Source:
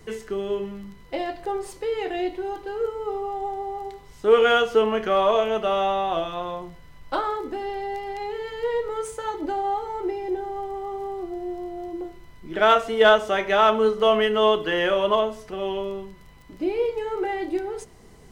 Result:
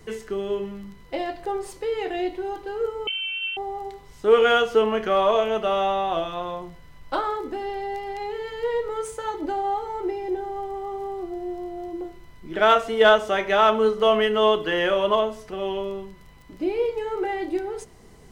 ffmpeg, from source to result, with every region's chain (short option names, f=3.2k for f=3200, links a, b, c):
-filter_complex "[0:a]asettb=1/sr,asplit=3[a][b][c];[a]atrim=end=3.074[d];[b]atrim=start=3.07:end=3.57,asetpts=PTS-STARTPTS,afade=t=in:d=0.004:c=qsin,afade=t=out:st=0.496:d=0.004:c=qsin,highpass=170,lowpass=f=3k:t=q:w=0.5098,lowpass=f=3k:t=q:w=0.6013,lowpass=f=3k:t=q:w=0.9,lowpass=f=3k:t=q:w=2.563,afreqshift=-3500[e];[c]atrim=start=3.566[f];[d][e]acrossfade=d=0.004:c1=hsin:c2=qsin[g];[g][f]acrossfade=d=0.004:c1=qsin:c2=hsin"